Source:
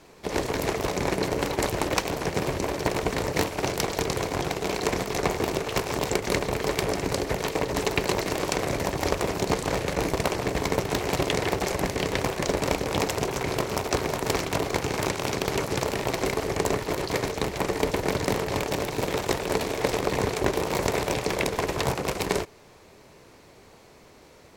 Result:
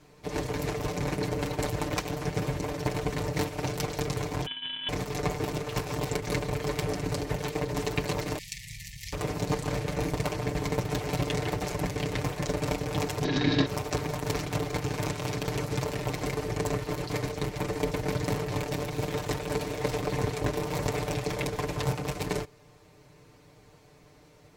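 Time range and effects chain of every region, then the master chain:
4.46–4.89 sample sorter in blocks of 64 samples + rippled Chebyshev high-pass 180 Hz, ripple 6 dB + inverted band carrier 3700 Hz
8.38–9.13 brick-wall FIR band-stop 230–1700 Hz + passive tone stack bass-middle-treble 10-0-10
13.24–13.66 LPF 5500 Hz 24 dB/oct + bell 4000 Hz +9.5 dB 1.4 oct + small resonant body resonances 260/1700/3800 Hz, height 16 dB, ringing for 35 ms
whole clip: bell 75 Hz +11.5 dB 2 oct; comb 6.7 ms, depth 80%; gain -8.5 dB

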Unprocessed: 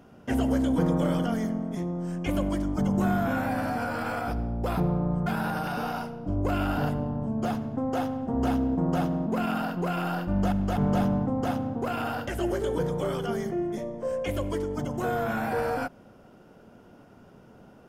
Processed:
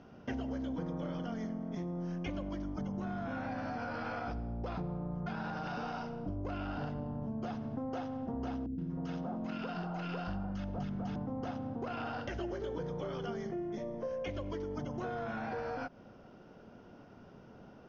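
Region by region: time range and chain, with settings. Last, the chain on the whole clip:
8.66–11.16 high shelf 8400 Hz +5 dB + three bands offset in time lows, highs, mids 0.12/0.31 s, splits 360/1200 Hz
whole clip: compressor 6:1, threshold -33 dBFS; steep low-pass 6300 Hz 96 dB/oct; gain -2.5 dB

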